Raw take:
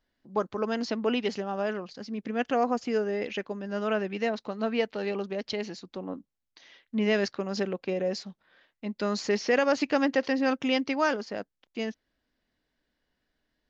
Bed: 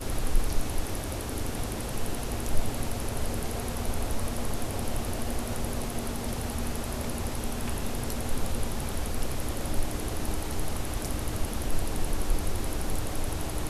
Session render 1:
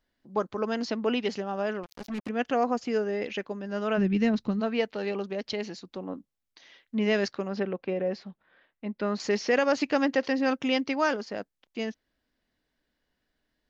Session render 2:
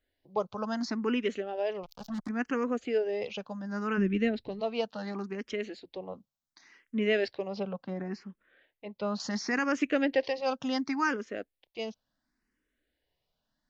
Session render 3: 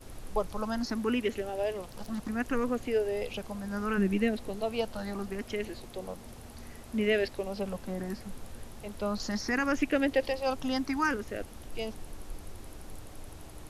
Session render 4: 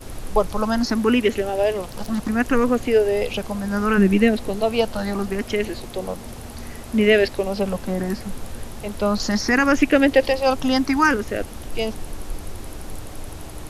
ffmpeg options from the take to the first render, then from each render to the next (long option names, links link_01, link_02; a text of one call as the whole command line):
ffmpeg -i in.wav -filter_complex "[0:a]asettb=1/sr,asplit=3[link_01][link_02][link_03];[link_01]atrim=end=1.834[link_04];[link_02]atrim=start=1.83:end=2.29,asetpts=PTS-STARTPTS,afade=type=in:duration=0.004:curve=qsin,afade=type=out:start_time=0.456:duration=0.004:curve=qsin,acrusher=bits=5:mix=0:aa=0.5[link_05];[link_03]atrim=start=2.286[link_06];[link_04][link_05]acrossfade=duration=0.004:curve1=hsin:curve2=qsin[link_07];[link_07][link_06]acrossfade=duration=0.004:curve1=qsin:curve2=hsin,asplit=3[link_08][link_09][link_10];[link_08]afade=type=out:start_time=3.97:duration=0.02[link_11];[link_09]asubboost=boost=10:cutoff=200,afade=type=in:start_time=3.97:duration=0.02,afade=type=out:start_time=4.59:duration=0.02[link_12];[link_10]afade=type=in:start_time=4.59:duration=0.02[link_13];[link_11][link_12][link_13]amix=inputs=3:normalize=0,asettb=1/sr,asplit=3[link_14][link_15][link_16];[link_14]atrim=end=7.484[link_17];[link_15]atrim=start=7.48:end=9.2,asetpts=PTS-STARTPTS,afade=type=in:duration=0.004:curve=qsin,afade=type=out:start_time=1.716:duration=0.004:curve=qsin,lowpass=2700[link_18];[link_16]atrim=start=9.196[link_19];[link_17][link_18]acrossfade=duration=0.004:curve1=hsin:curve2=qsin[link_20];[link_20][link_19]acrossfade=duration=0.004:curve1=qsin:curve2=hsin" out.wav
ffmpeg -i in.wav -filter_complex "[0:a]asplit=2[link_01][link_02];[link_02]afreqshift=0.7[link_03];[link_01][link_03]amix=inputs=2:normalize=1" out.wav
ffmpeg -i in.wav -i bed.wav -filter_complex "[1:a]volume=-15dB[link_01];[0:a][link_01]amix=inputs=2:normalize=0" out.wav
ffmpeg -i in.wav -af "volume=11.5dB" out.wav